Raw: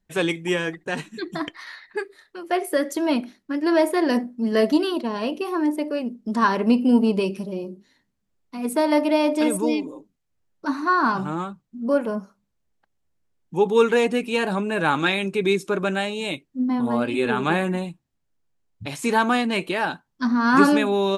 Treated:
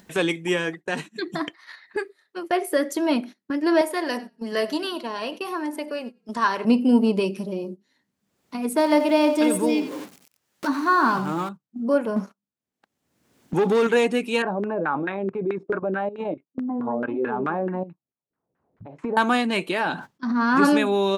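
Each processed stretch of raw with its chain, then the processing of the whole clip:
3.81–6.65 s: high-pass 760 Hz 6 dB/octave + frequency-shifting echo 96 ms, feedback 32%, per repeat -35 Hz, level -20 dB
8.77–11.49 s: jump at every zero crossing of -37 dBFS + delay 89 ms -12 dB + tape noise reduction on one side only encoder only
12.16–13.87 s: peaking EQ 260 Hz +5.5 dB 0.45 oct + compression, threshold -18 dBFS + waveshaping leveller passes 2
14.42–19.17 s: level held to a coarse grid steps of 14 dB + LFO low-pass saw down 4.6 Hz 390–1700 Hz
19.80–20.65 s: treble shelf 6.5 kHz -9.5 dB + transient shaper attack -10 dB, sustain +4 dB + decay stretcher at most 110 dB/s
whole clip: high-pass 140 Hz 12 dB/octave; gate -36 dBFS, range -17 dB; upward compressor, threshold -25 dBFS

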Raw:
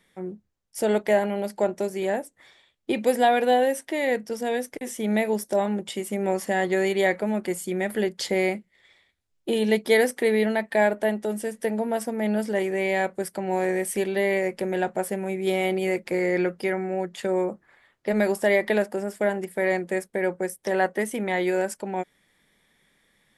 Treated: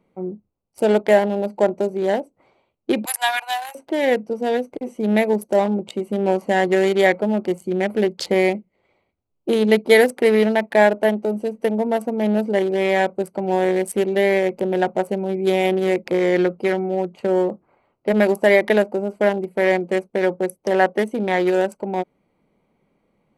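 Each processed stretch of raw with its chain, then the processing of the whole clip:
3.05–3.75 s: steep high-pass 830 Hz 48 dB/octave + treble shelf 5.1 kHz +11 dB
whole clip: local Wiener filter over 25 samples; bass shelf 86 Hz -9 dB; trim +7 dB

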